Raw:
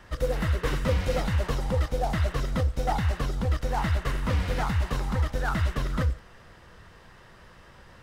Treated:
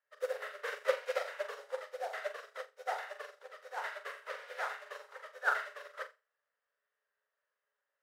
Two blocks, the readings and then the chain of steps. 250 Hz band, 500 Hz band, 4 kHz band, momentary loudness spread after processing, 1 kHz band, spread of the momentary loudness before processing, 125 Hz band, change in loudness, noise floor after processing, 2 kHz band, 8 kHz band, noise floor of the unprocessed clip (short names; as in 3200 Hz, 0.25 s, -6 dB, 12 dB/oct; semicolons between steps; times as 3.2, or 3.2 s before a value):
under -40 dB, -7.0 dB, -11.0 dB, 14 LU, -8.0 dB, 2 LU, under -40 dB, -11.5 dB, under -85 dBFS, -3.0 dB, -12.5 dB, -52 dBFS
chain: rippled Chebyshev high-pass 410 Hz, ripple 9 dB; flutter echo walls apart 7.3 m, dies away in 0.56 s; upward expander 2.5:1, over -53 dBFS; gain +4 dB